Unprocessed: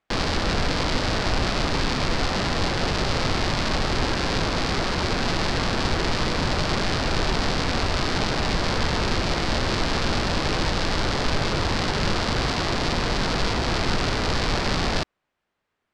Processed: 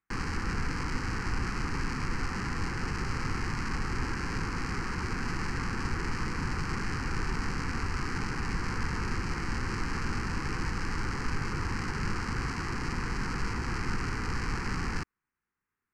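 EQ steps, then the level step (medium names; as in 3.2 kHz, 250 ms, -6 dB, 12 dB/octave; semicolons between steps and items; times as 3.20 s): static phaser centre 1.5 kHz, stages 4; -6.5 dB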